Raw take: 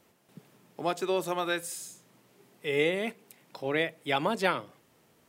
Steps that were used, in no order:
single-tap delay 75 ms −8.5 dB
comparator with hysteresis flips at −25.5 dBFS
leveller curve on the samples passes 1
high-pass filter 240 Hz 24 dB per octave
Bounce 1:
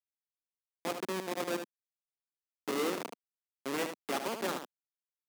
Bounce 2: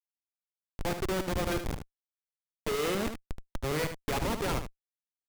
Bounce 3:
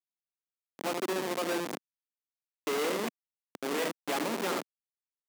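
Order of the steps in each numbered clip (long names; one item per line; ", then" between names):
comparator with hysteresis, then single-tap delay, then leveller curve on the samples, then high-pass filter
high-pass filter, then leveller curve on the samples, then comparator with hysteresis, then single-tap delay
single-tap delay, then leveller curve on the samples, then comparator with hysteresis, then high-pass filter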